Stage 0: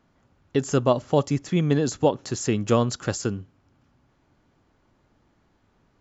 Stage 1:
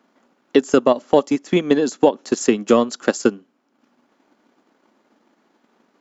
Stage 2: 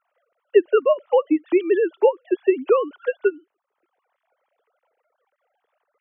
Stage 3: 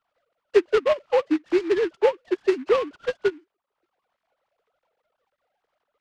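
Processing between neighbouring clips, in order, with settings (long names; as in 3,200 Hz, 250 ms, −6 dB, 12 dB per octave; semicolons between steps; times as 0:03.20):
Chebyshev high-pass filter 220 Hz, order 4; transient designer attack +8 dB, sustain −6 dB; boost into a limiter +7 dB; level −1 dB
three sine waves on the formant tracks; level −2 dB
short delay modulated by noise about 1,600 Hz, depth 0.049 ms; level −3 dB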